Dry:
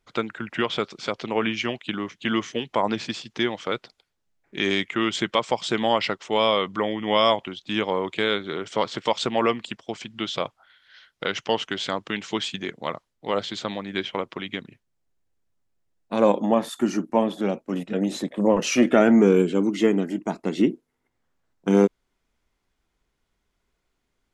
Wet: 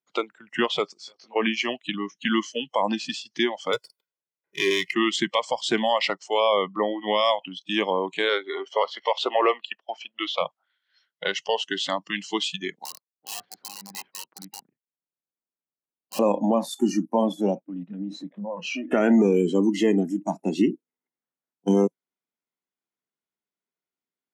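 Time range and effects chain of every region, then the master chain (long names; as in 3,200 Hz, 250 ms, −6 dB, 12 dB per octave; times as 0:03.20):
0:00.94–0:01.36: bass and treble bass −7 dB, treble −1 dB + downward compressor, threshold −32 dBFS + micro pitch shift up and down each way 10 cents
0:03.73–0:04.93: comb filter 2 ms, depth 79% + windowed peak hold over 3 samples
0:06.40–0:07.01: low-pass filter 2,000 Hz 6 dB per octave + low-shelf EQ 74 Hz +6.5 dB
0:08.29–0:10.41: leveller curve on the samples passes 1 + band-pass filter 390–3,000 Hz
0:12.85–0:16.19: mu-law and A-law mismatch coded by A + low-pass filter 1,700 Hz 24 dB per octave + wrap-around overflow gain 27.5 dB
0:17.60–0:18.91: low-pass filter 2,800 Hz + downward compressor 4 to 1, threshold −28 dBFS
whole clip: high-pass filter 160 Hz 24 dB per octave; noise reduction from a noise print of the clip's start 20 dB; brickwall limiter −13 dBFS; level +2 dB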